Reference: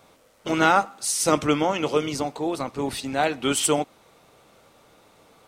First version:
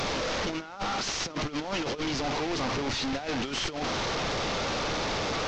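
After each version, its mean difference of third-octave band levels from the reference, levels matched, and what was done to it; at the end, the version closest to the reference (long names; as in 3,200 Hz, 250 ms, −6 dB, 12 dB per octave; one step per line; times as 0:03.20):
16.5 dB: linear delta modulator 32 kbit/s, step −19.5 dBFS
low-shelf EQ 63 Hz +7.5 dB
compressor whose output falls as the input rises −24 dBFS, ratio −0.5
level −6 dB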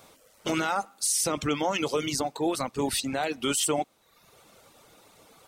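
4.0 dB: reverb reduction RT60 0.76 s
high-shelf EQ 4,400 Hz +8 dB
brickwall limiter −16.5 dBFS, peak gain reduction 14.5 dB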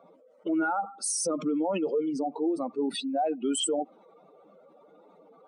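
12.5 dB: expanding power law on the bin magnitudes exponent 2.6
elliptic high-pass filter 170 Hz, stop band 40 dB
brickwall limiter −20.5 dBFS, peak gain reduction 11 dB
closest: second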